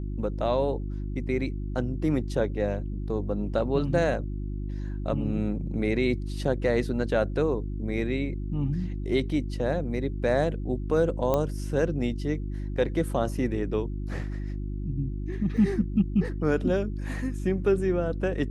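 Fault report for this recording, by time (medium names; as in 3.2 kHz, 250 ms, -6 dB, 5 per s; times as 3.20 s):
hum 50 Hz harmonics 7 -32 dBFS
11.34 s: pop -13 dBFS
15.57 s: dropout 4 ms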